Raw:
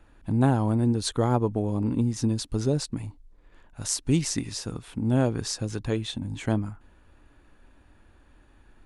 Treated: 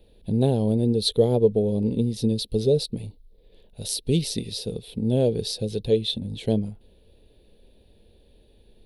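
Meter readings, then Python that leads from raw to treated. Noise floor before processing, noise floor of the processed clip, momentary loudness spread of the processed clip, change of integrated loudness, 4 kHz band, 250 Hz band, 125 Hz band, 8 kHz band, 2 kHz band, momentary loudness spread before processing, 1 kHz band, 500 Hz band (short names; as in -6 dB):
-57 dBFS, -57 dBFS, 11 LU, +3.0 dB, +6.0 dB, +1.0 dB, 0.0 dB, -3.0 dB, -8.5 dB, 10 LU, -7.0 dB, +8.0 dB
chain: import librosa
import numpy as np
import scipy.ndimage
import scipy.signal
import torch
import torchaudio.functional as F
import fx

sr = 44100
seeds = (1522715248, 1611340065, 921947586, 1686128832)

y = fx.curve_eq(x, sr, hz=(140.0, 210.0, 290.0, 450.0, 1300.0, 3900.0, 6900.0, 11000.0), db=(0, 5, -6, 12, -23, 11, -11, 8))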